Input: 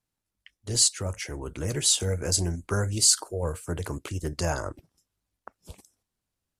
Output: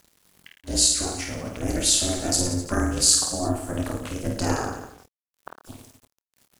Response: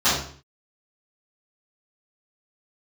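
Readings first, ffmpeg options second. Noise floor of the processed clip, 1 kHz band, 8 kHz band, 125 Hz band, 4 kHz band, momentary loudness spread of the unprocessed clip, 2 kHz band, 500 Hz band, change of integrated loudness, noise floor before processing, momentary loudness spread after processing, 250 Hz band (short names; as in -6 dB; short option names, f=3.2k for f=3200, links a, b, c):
under -85 dBFS, +6.0 dB, +3.0 dB, -1.0 dB, +3.0 dB, 14 LU, +3.0 dB, +2.0 dB, +3.0 dB, under -85 dBFS, 13 LU, +8.0 dB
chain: -filter_complex "[0:a]acompressor=mode=upward:threshold=-44dB:ratio=2.5,aecho=1:1:50|107.5|173.6|249.7|337.1:0.631|0.398|0.251|0.158|0.1,acrusher=bits=8:mix=0:aa=0.000001,asplit=2[a][b];[b]adelay=26,volume=-8.5dB[c];[a][c]amix=inputs=2:normalize=0,aeval=exprs='val(0)*sin(2*PI*180*n/s)':c=same,volume=3.5dB"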